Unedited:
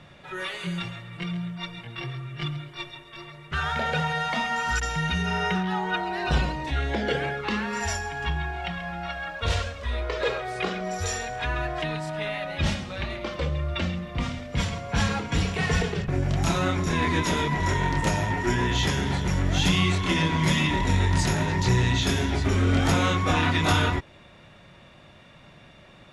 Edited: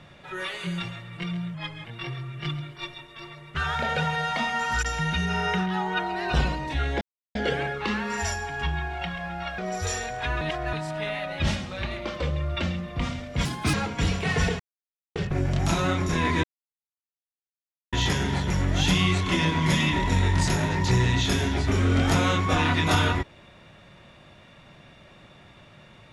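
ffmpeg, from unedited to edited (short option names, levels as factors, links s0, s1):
-filter_complex "[0:a]asplit=12[s0][s1][s2][s3][s4][s5][s6][s7][s8][s9][s10][s11];[s0]atrim=end=1.544[s12];[s1]atrim=start=1.54:end=1.82,asetpts=PTS-STARTPTS,asetrate=39690,aresample=44100[s13];[s2]atrim=start=1.816:end=6.98,asetpts=PTS-STARTPTS,afade=t=out:st=5.16:d=0.004:c=hsin,apad=pad_dur=0.34[s14];[s3]atrim=start=6.98:end=9.212,asetpts=PTS-STARTPTS,afade=t=in:d=0.004:c=hsin[s15];[s4]atrim=start=10.768:end=11.602[s16];[s5]atrim=start=11.598:end=11.922,asetpts=PTS-STARTPTS,areverse[s17];[s6]atrim=start=11.918:end=14.644[s18];[s7]atrim=start=14.64:end=15.07,asetpts=PTS-STARTPTS,asetrate=66591,aresample=44100,atrim=end_sample=12558,asetpts=PTS-STARTPTS[s19];[s8]atrim=start=15.066:end=15.93,asetpts=PTS-STARTPTS,afade=t=out:st=0.86:d=0.004:c=hsin,apad=pad_dur=0.56[s20];[s9]atrim=start=15.93:end=17.21,asetpts=PTS-STARTPTS,afade=t=in:d=0.004:c=hsin,afade=t=out:st=1.276:d=0.004:c=hsin[s21];[s10]atrim=start=17.21:end=18.7,asetpts=PTS-STARTPTS,volume=0[s22];[s11]atrim=start=18.7,asetpts=PTS-STARTPTS,afade=t=in:d=0.004:c=hsin[s23];[s12][s13]acrossfade=d=0.004:c1=hsin:c2=hsin[s24];[s14][s15]concat=n=2:v=0:a=1[s25];[s24][s25]acrossfade=d=0.004:c1=hsin:c2=hsin[s26];[s26][s16]acrossfade=d=0.004:c1=hsin:c2=hsin[s27];[s27][s17]acrossfade=d=0.004:c1=hsin:c2=hsin[s28];[s28][s18]acrossfade=d=0.004:c1=hsin:c2=hsin[s29];[s29][s19]acrossfade=d=0.004:c1=hsin:c2=hsin[s30];[s20][s21][s22][s23]concat=n=4:v=0:a=1[s31];[s30][s31]acrossfade=d=0.004:c1=hsin:c2=hsin"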